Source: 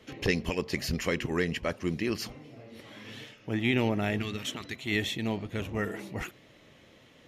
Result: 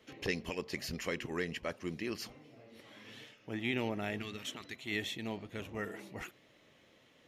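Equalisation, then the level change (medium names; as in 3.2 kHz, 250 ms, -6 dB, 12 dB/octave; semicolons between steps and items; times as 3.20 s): bass shelf 170 Hz -7.5 dB; -6.5 dB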